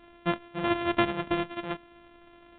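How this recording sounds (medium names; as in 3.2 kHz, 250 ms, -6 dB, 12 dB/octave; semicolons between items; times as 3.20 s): a buzz of ramps at a fixed pitch in blocks of 128 samples; µ-law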